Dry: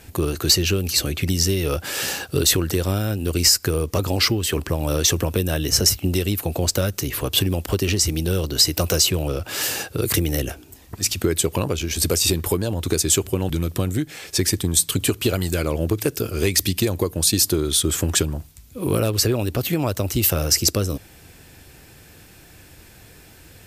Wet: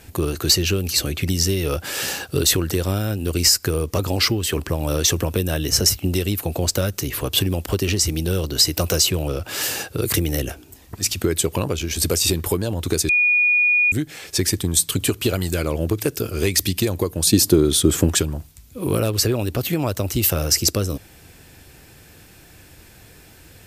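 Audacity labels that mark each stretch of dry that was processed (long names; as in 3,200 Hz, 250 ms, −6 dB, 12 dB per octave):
13.090000	13.920000	beep over 2,450 Hz −13.5 dBFS
17.270000	18.090000	parametric band 250 Hz +8 dB 2.7 octaves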